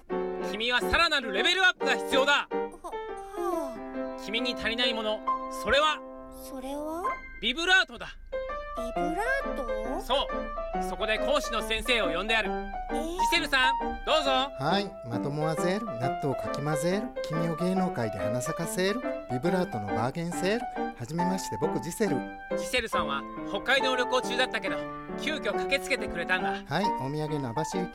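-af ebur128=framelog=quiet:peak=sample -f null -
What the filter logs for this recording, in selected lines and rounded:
Integrated loudness:
  I:         -28.3 LUFS
  Threshold: -38.4 LUFS
Loudness range:
  LRA:         3.6 LU
  Threshold: -48.6 LUFS
  LRA low:   -30.1 LUFS
  LRA high:  -26.5 LUFS
Sample peak:
  Peak:      -12.6 dBFS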